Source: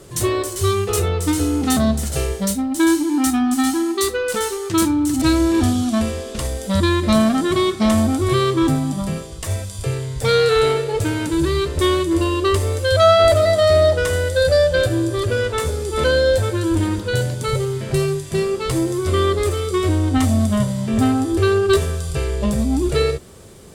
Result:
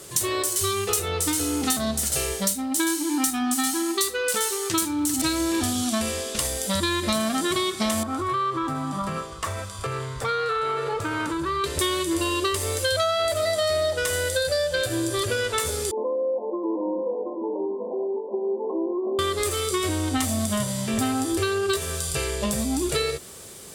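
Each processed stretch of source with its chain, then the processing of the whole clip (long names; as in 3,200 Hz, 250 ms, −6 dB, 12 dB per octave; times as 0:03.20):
0:08.03–0:11.64: low-pass filter 1,800 Hz 6 dB per octave + parametric band 1,200 Hz +14 dB 0.61 octaves + downward compressor, threshold −20 dBFS
0:15.91–0:19.19: downward compressor, threshold −17 dBFS + linear-phase brick-wall band-pass 200–1,100 Hz + single-tap delay 729 ms −5.5 dB
whole clip: spectral tilt +2.5 dB per octave; downward compressor 6 to 1, threshold −21 dBFS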